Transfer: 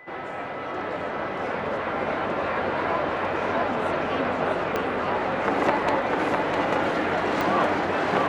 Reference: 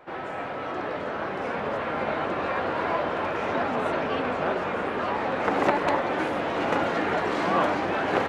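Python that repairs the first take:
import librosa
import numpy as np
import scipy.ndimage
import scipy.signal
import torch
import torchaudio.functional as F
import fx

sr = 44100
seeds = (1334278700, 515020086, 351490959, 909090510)

y = fx.fix_declick_ar(x, sr, threshold=10.0)
y = fx.notch(y, sr, hz=2000.0, q=30.0)
y = fx.fix_echo_inverse(y, sr, delay_ms=653, level_db=-4.0)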